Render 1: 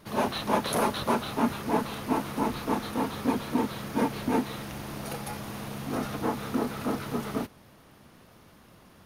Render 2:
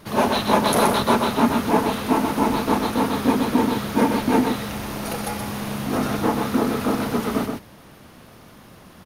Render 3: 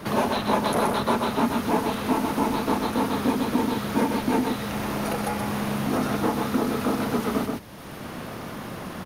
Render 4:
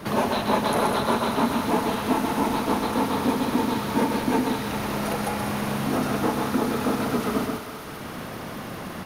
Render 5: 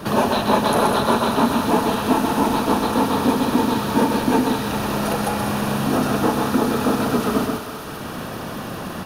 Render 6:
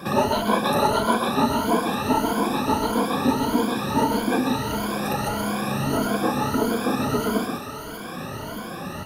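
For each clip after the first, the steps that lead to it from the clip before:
echo 0.126 s -5 dB; gain +7.5 dB
three-band squash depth 70%; gain -4 dB
thinning echo 0.197 s, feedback 74%, high-pass 420 Hz, level -8 dB
notch 2100 Hz, Q 6; gain +5 dB
moving spectral ripple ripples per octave 1.8, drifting +1.6 Hz, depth 17 dB; gain -6 dB

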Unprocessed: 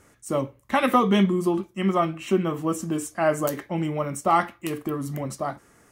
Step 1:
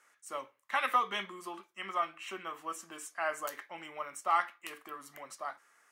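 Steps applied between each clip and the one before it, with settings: Chebyshev high-pass 1400 Hz, order 2; tilt -2 dB/oct; gain -3 dB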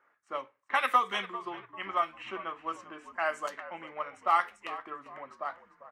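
transient shaper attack +2 dB, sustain -2 dB; frequency-shifting echo 0.396 s, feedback 37%, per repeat -62 Hz, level -15 dB; low-pass opened by the level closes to 1300 Hz, open at -27 dBFS; gain +2.5 dB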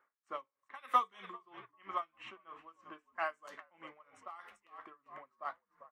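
small resonant body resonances 1100/3500 Hz, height 8 dB; dB-linear tremolo 3.1 Hz, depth 25 dB; gain -4.5 dB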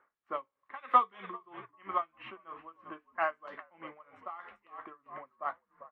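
air absorption 400 m; gain +7.5 dB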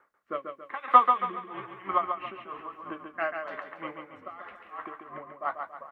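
rotary speaker horn 1 Hz; on a send: feedback echo 0.139 s, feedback 41%, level -6 dB; on the sum: gain +8.5 dB

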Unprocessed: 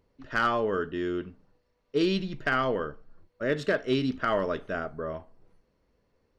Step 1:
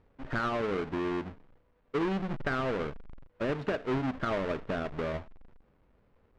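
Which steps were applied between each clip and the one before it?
half-waves squared off; LPF 2300 Hz 12 dB/oct; compressor 3:1, threshold -31 dBFS, peak gain reduction 9.5 dB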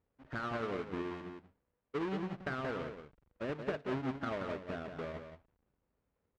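HPF 45 Hz; echo 0.179 s -5.5 dB; upward expander 1.5:1, over -46 dBFS; gain -5.5 dB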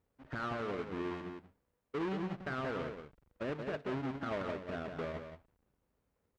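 limiter -31.5 dBFS, peak gain reduction 7 dB; gain +2 dB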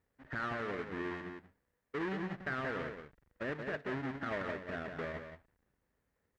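bell 1800 Hz +10 dB 0.45 oct; gain -1.5 dB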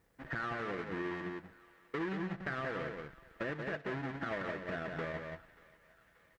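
comb 6 ms, depth 34%; compressor 2.5:1, threshold -49 dBFS, peak gain reduction 11.5 dB; thinning echo 0.583 s, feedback 67%, high-pass 750 Hz, level -21 dB; gain +9 dB

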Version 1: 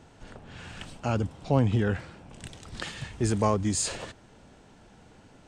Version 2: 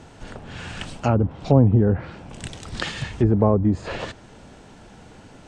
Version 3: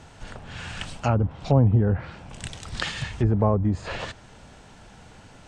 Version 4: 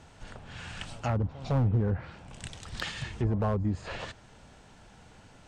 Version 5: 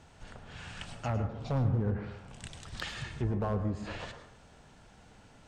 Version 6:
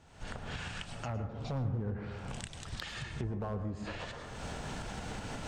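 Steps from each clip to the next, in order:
treble ducked by the level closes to 660 Hz, closed at -22 dBFS; gain +8.5 dB
bell 320 Hz -7 dB 1.7 oct
pre-echo 0.158 s -22 dB; overloaded stage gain 14.5 dB; gain -6 dB
plate-style reverb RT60 0.66 s, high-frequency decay 0.45×, pre-delay 90 ms, DRR 8 dB; gain -3.5 dB
recorder AGC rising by 44 dB/s; gain -5.5 dB

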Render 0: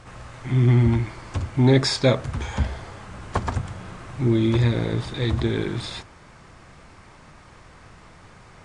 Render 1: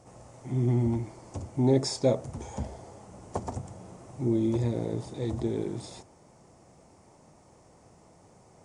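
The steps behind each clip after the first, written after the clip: HPF 210 Hz 6 dB/oct; band shelf 2200 Hz -14.5 dB 2.3 oct; notch 1600 Hz, Q 14; gain -3.5 dB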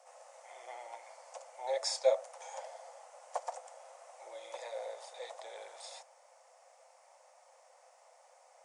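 rippled Chebyshev high-pass 510 Hz, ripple 3 dB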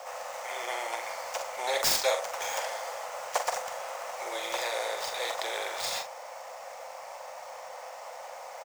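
median filter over 5 samples; doubler 44 ms -9 dB; spectral compressor 2:1; gain +3 dB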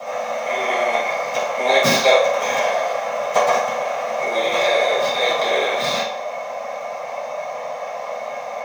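reverb RT60 0.65 s, pre-delay 3 ms, DRR -11 dB; gain -1 dB

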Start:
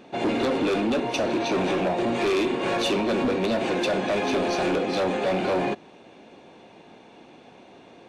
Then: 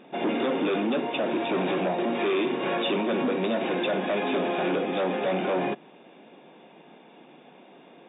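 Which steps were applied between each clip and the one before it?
FFT band-pass 130–3800 Hz; gain -2 dB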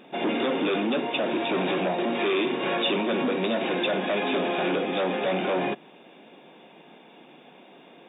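high shelf 3100 Hz +8 dB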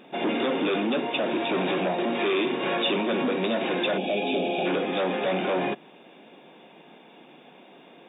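spectral gain 3.98–4.66, 870–2200 Hz -16 dB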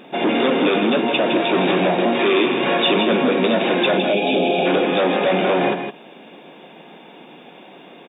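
echo 0.161 s -7 dB; gain +7.5 dB

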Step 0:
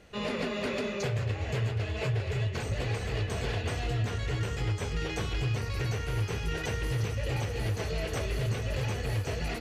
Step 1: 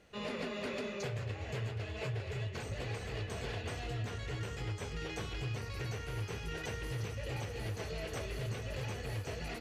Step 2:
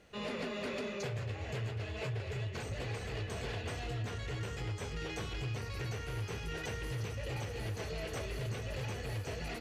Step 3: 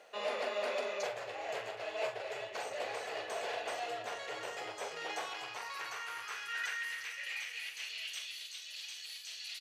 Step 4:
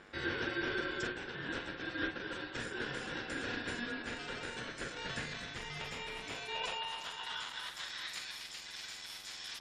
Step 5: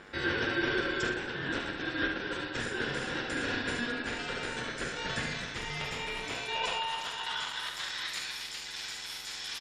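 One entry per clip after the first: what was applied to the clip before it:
low shelf 110 Hz -4.5 dB; gain -6.5 dB
soft clip -31 dBFS, distortion -22 dB; gain +1.5 dB
reverse; upward compressor, threshold -41 dBFS; reverse; high-pass sweep 650 Hz -> 3700 Hz, 4.93–8.52; doubler 44 ms -8 dB; gain +1 dB
spectral gate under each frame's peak -30 dB strong; buzz 100 Hz, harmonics 13, -61 dBFS -1 dB/oct; ring modulator 960 Hz; gain +2.5 dB
echo 72 ms -7 dB; gain +5.5 dB

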